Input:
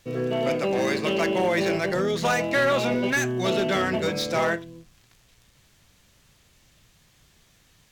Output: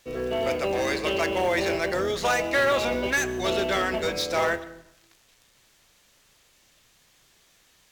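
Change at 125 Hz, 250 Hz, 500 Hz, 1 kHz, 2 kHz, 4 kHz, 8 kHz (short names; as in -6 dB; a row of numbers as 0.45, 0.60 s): -6.5, -5.0, -1.0, 0.0, 0.0, +0.5, +1.0 dB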